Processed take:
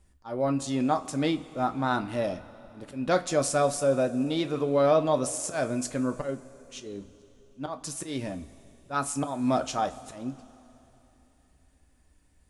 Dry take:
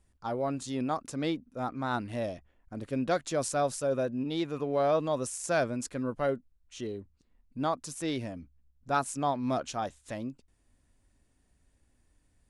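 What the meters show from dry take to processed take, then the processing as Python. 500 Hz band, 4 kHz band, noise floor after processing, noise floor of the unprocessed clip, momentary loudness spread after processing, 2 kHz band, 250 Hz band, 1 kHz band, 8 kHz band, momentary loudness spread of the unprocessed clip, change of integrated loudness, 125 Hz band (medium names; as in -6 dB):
+4.0 dB, +4.0 dB, -63 dBFS, -70 dBFS, 16 LU, +2.0 dB, +4.5 dB, +2.5 dB, +5.0 dB, 11 LU, +4.0 dB, +3.0 dB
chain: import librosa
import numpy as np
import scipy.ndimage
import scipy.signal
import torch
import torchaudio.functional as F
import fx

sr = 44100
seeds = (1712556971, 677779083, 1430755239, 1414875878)

y = fx.auto_swell(x, sr, attack_ms=187.0)
y = fx.rev_double_slope(y, sr, seeds[0], early_s=0.21, late_s=3.2, knee_db=-20, drr_db=6.0)
y = y * librosa.db_to_amplitude(4.0)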